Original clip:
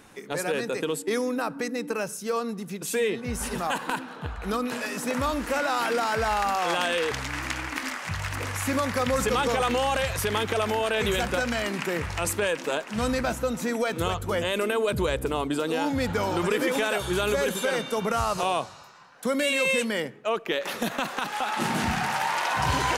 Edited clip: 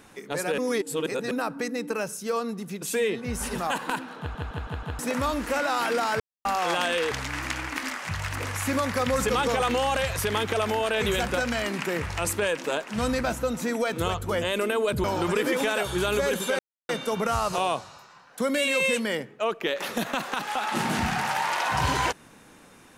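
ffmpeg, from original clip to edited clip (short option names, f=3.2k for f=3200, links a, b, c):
-filter_complex "[0:a]asplit=12[a][b][c][d][e][f][g][h][i][j][k][l];[a]atrim=end=0.582[m];[b]atrim=start=0.578:end=1.312,asetpts=PTS-STARTPTS,areverse[n];[c]atrim=start=1.308:end=4.352[o];[d]atrim=start=4.188:end=4.352[p];[e]atrim=start=4.188:end=4.352[q];[f]atrim=start=4.188:end=4.352[r];[g]atrim=start=4.188:end=4.352[s];[h]atrim=start=4.988:end=6.2,asetpts=PTS-STARTPTS,afade=t=out:st=1.208:d=0.004:c=hsin[t];[i]atrim=start=6.2:end=6.45,asetpts=PTS-STARTPTS,volume=0[u];[j]atrim=start=6.45:end=15.042,asetpts=PTS-STARTPTS,afade=t=in:d=0.004:c=hsin[v];[k]atrim=start=16.188:end=17.74,asetpts=PTS-STARTPTS,afade=t=out:st=1.548:d=0.004:c=hsin,apad=pad_dur=0.3[w];[l]atrim=start=17.74,asetpts=PTS-STARTPTS,afade=t=in:d=0.004:c=hsin[x];[m][n]acrossfade=d=0.004:c1=hsin:c2=hsin[y];[y][o]acrossfade=d=0.004:c1=hsin:c2=hsin[z];[z][p]acrossfade=d=0.004:c1=hsin:c2=hsin[aa];[aa][q]acrossfade=d=0.004:c1=hsin:c2=hsin[ab];[ab][r]acrossfade=d=0.004:c1=hsin:c2=hsin[ac];[ac][s]acrossfade=d=0.004:c1=hsin:c2=hsin[ad];[t][u][v]concat=n=3:v=0:a=1[ae];[ad][ae]acrossfade=d=0.004:c1=hsin:c2=hsin[af];[w][x]concat=n=2:v=0:a=1[ag];[af][ag]acrossfade=d=0.004:c1=hsin:c2=hsin"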